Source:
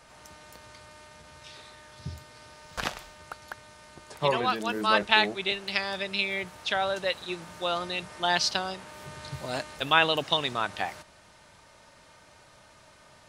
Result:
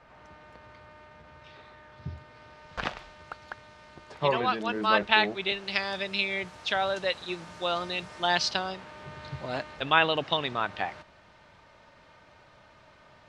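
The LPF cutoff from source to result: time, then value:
2.09 s 2300 Hz
3.13 s 3900 Hz
5.21 s 3900 Hz
5.93 s 6700 Hz
8.21 s 6700 Hz
9.05 s 3400 Hz

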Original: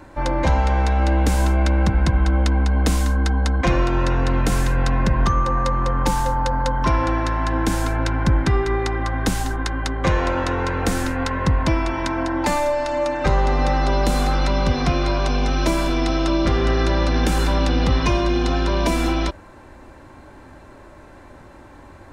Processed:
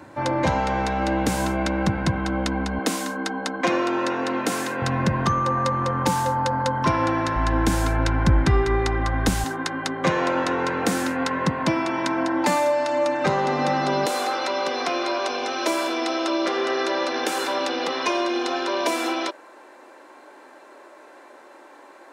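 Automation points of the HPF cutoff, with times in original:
HPF 24 dB/oct
100 Hz
from 2.79 s 230 Hz
from 4.82 s 100 Hz
from 7.35 s 40 Hz
from 9.44 s 150 Hz
from 14.06 s 350 Hz

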